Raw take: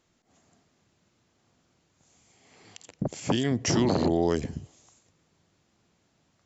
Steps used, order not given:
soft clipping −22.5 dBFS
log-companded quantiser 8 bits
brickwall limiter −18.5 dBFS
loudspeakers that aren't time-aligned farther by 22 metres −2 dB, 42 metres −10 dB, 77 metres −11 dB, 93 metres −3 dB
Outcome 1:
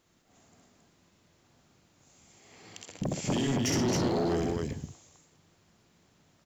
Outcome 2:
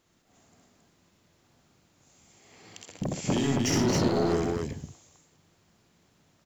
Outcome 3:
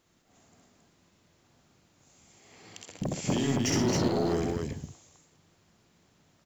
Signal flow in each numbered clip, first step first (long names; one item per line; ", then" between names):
brickwall limiter, then loudspeakers that aren't time-aligned, then log-companded quantiser, then soft clipping
log-companded quantiser, then soft clipping, then brickwall limiter, then loudspeakers that aren't time-aligned
brickwall limiter, then soft clipping, then loudspeakers that aren't time-aligned, then log-companded quantiser